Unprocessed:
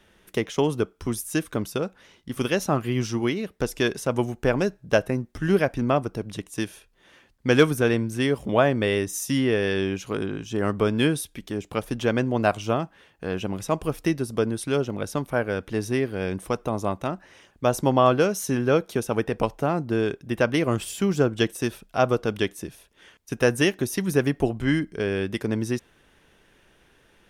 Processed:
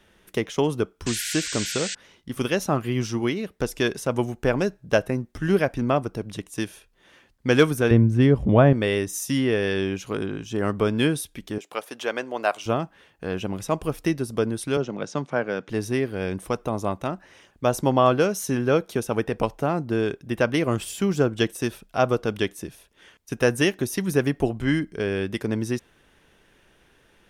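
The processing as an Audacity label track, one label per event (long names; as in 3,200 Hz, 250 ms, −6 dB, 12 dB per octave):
1.060000	1.950000	sound drawn into the spectrogram noise 1,400–8,600 Hz −31 dBFS
7.910000	8.730000	RIAA equalisation playback
11.580000	12.660000	high-pass filter 520 Hz
14.770000	15.690000	elliptic band-pass filter 140–6,900 Hz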